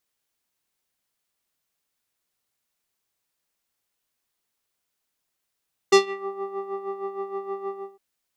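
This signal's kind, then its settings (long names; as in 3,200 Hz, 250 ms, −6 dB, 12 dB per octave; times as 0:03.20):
subtractive patch with tremolo G4, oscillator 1 square, oscillator 2 triangle, interval +12 semitones, oscillator 2 level −8.5 dB, sub −23 dB, noise −20 dB, filter lowpass, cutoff 810 Hz, Q 1.8, filter envelope 3 octaves, filter decay 0.35 s, filter sustain 10%, attack 9.1 ms, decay 0.13 s, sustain −18.5 dB, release 0.27 s, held 1.79 s, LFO 6.4 Hz, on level 10 dB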